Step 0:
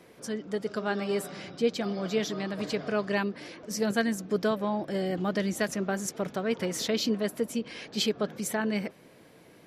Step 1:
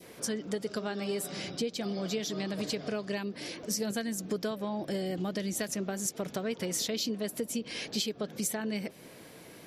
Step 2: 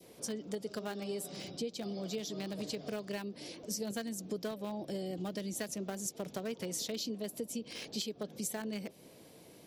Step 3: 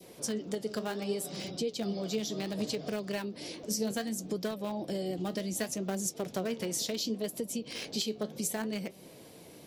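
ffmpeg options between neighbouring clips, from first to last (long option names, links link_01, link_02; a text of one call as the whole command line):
ffmpeg -i in.wav -af "highshelf=frequency=3500:gain=7.5,acompressor=threshold=-33dB:ratio=6,adynamicequalizer=threshold=0.00224:dfrequency=1300:dqfactor=0.89:tfrequency=1300:tqfactor=0.89:attack=5:release=100:ratio=0.375:range=3:mode=cutabove:tftype=bell,volume=3.5dB" out.wav
ffmpeg -i in.wav -filter_complex "[0:a]acrossover=split=200|990|2200[link_01][link_02][link_03][link_04];[link_02]crystalizer=i=6.5:c=0[link_05];[link_03]acrusher=bits=6:mix=0:aa=0.000001[link_06];[link_01][link_05][link_06][link_04]amix=inputs=4:normalize=0,volume=-5.5dB" out.wav
ffmpeg -i in.wav -af "flanger=delay=5.2:depth=8.9:regen=70:speed=0.67:shape=sinusoidal,volume=9dB" out.wav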